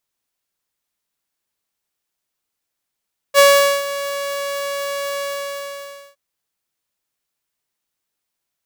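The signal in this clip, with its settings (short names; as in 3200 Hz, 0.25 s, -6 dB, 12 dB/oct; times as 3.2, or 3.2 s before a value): ADSR saw 563 Hz, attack 47 ms, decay 0.435 s, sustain -15.5 dB, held 1.86 s, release 0.955 s -4 dBFS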